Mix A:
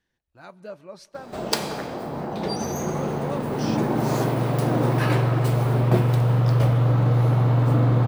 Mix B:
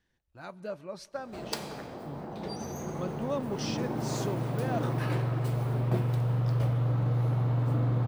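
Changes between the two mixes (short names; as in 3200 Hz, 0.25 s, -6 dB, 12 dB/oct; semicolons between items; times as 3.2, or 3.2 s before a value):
background -11.0 dB; master: add low shelf 130 Hz +5 dB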